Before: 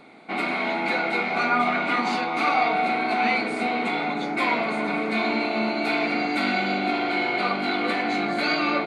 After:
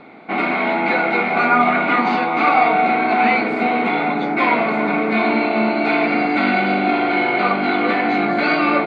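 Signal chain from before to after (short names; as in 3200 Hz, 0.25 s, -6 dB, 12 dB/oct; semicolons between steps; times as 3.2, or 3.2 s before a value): LPF 2600 Hz 12 dB/oct; gain +7.5 dB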